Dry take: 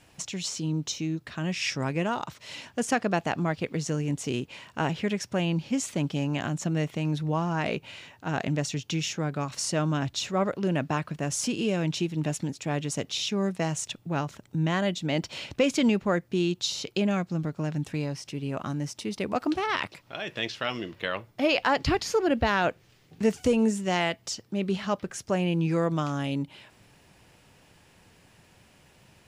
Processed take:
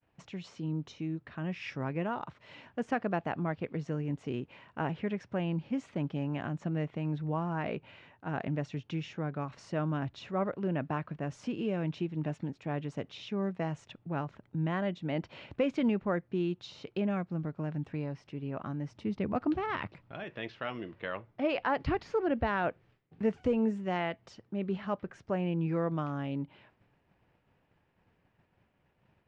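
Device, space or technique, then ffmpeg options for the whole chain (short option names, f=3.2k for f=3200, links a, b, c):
hearing-loss simulation: -filter_complex "[0:a]lowpass=2k,agate=range=-33dB:threshold=-52dB:ratio=3:detection=peak,asettb=1/sr,asplit=3[a][b][c];[a]atrim=end=18.904[d];[b]atrim=start=18.9:end=20.24,asetpts=PTS-STARTPTS,afade=t=in:d=0.004:c=qsin,afade=t=out:st=1.336:d=0.004:c=qsin,bass=f=250:g=9,treble=f=4k:g=1[e];[c]atrim=start=20.236[f];[d][e]acrossfade=d=0.004:c1=hsin:c2=qsin[g];[g][f]acrossfade=d=0.004:c1=qsin:c2=hsin,volume=-5.5dB"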